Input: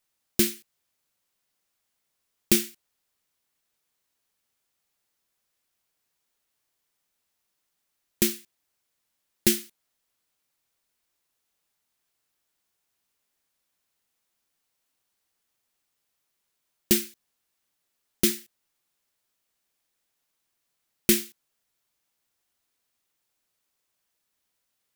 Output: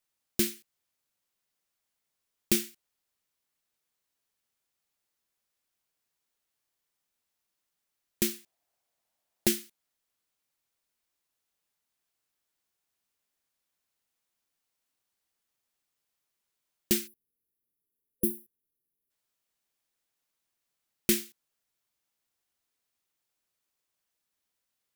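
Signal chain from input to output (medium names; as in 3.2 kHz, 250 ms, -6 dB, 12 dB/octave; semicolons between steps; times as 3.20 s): 8.34–9.52 s: peaking EQ 700 Hz +12 dB 0.71 oct; 17.07–19.10 s: time-frequency box 510–9800 Hz -26 dB; trim -5 dB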